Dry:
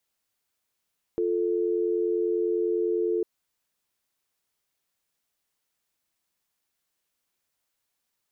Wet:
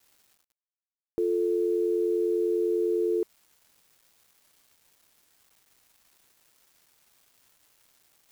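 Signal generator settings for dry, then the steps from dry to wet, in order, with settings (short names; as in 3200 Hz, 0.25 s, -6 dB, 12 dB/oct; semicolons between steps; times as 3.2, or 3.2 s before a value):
call progress tone dial tone, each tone -25.5 dBFS 2.05 s
reverse; upward compressor, threshold -45 dBFS; reverse; bit-crush 9-bit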